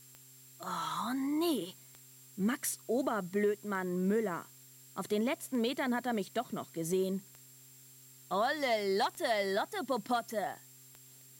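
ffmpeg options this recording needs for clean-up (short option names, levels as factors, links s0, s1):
-af "adeclick=t=4,bandreject=f=130.1:t=h:w=4,bandreject=f=260.2:t=h:w=4,bandreject=f=390.3:t=h:w=4,bandreject=f=7500:w=30,afftdn=nr=23:nf=-57"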